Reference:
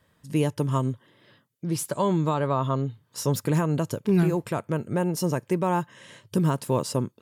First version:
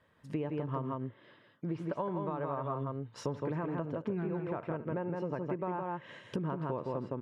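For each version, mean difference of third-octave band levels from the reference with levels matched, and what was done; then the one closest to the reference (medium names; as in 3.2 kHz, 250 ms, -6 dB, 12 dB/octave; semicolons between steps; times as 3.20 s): 8.5 dB: tone controls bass -6 dB, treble -14 dB; multi-tap echo 75/164 ms -18/-4 dB; compression 10:1, threshold -30 dBFS, peak gain reduction 11.5 dB; low-pass that closes with the level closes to 2.2 kHz, closed at -33 dBFS; trim -1.5 dB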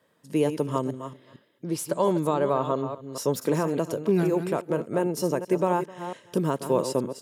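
4.0 dB: chunks repeated in reverse 227 ms, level -9.5 dB; high-pass 190 Hz 12 dB/octave; peaking EQ 470 Hz +6 dB 1.5 oct; on a send: delay 258 ms -21 dB; on the sum: trim -2.5 dB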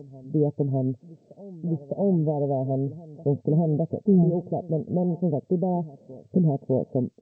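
11.5 dB: steep low-pass 780 Hz 96 dB/octave; comb 4.5 ms, depth 30%; on a send: reverse echo 607 ms -19.5 dB; on the sum: trim +1.5 dB; G.722 64 kbps 16 kHz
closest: second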